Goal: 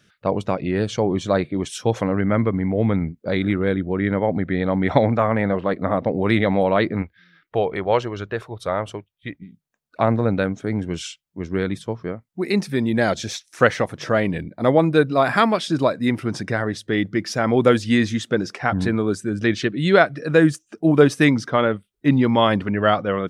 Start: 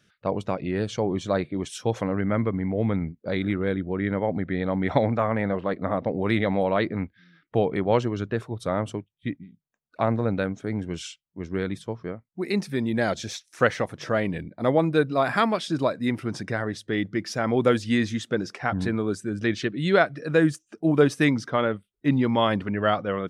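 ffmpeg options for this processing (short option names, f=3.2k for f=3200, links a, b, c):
-filter_complex "[0:a]asettb=1/sr,asplit=3[a][b][c];[a]atrim=end=7.024[d];[b]atrim=start=7.02:end=9.42,asetpts=PTS-STARTPTS,afade=t=in:d=0.004:c=qsin,afade=t=out:st=2.396:d=0.004:c=qsin,equalizer=f=125:t=o:w=1:g=-6,equalizer=f=250:t=o:w=1:g=-10,equalizer=f=8k:t=o:w=1:g=-5[e];[c]atrim=start=9.416[f];[d][e]acrossfade=d=0.004:c1=hsin:c2=qsin[g];[g][f]acrossfade=d=0.004:c1=qsin:c2=hsin,volume=5dB"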